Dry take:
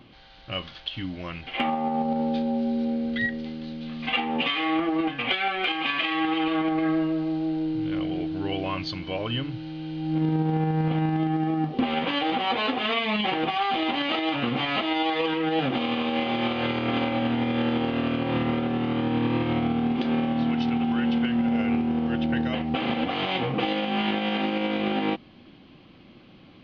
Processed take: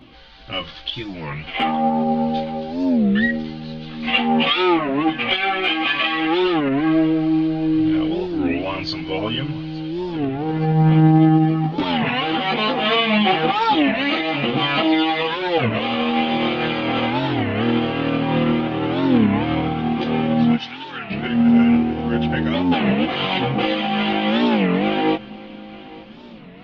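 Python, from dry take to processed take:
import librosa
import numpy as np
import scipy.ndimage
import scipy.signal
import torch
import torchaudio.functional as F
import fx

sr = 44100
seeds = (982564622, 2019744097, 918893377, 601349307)

y = fx.highpass(x, sr, hz=1400.0, slope=12, at=(20.55, 21.11), fade=0.02)
y = fx.chorus_voices(y, sr, voices=4, hz=0.28, base_ms=16, depth_ms=3.2, mix_pct=55)
y = fx.echo_feedback(y, sr, ms=869, feedback_pct=50, wet_db=-20.5)
y = fx.record_warp(y, sr, rpm=33.33, depth_cents=250.0)
y = F.gain(torch.from_numpy(y), 9.0).numpy()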